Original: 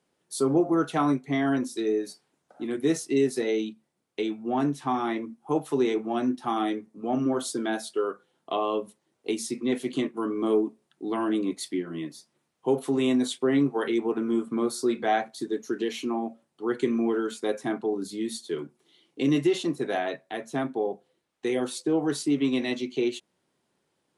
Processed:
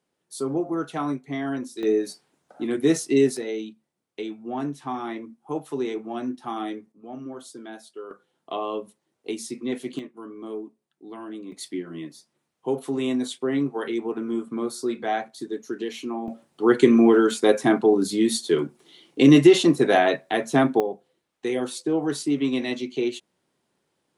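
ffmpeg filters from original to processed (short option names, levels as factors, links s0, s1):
-af "asetnsamples=n=441:p=0,asendcmd='1.83 volume volume 4.5dB;3.37 volume volume -3.5dB;6.92 volume volume -11dB;8.11 volume volume -2dB;9.99 volume volume -10.5dB;11.52 volume volume -1.5dB;16.28 volume volume 10dB;20.8 volume volume 1dB',volume=0.668"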